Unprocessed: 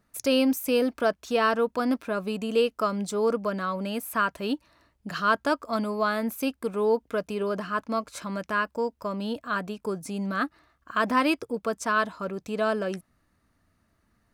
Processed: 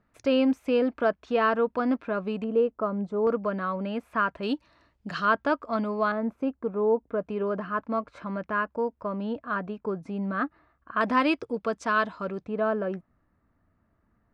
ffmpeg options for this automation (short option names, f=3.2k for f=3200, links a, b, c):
-af "asetnsamples=n=441:p=0,asendcmd='2.44 lowpass f 1000;3.27 lowpass f 2200;4.43 lowpass f 5100;5.25 lowpass f 2700;6.12 lowpass f 1100;7.21 lowpass f 1800;11.01 lowpass f 4100;12.44 lowpass f 1500',lowpass=2.4k"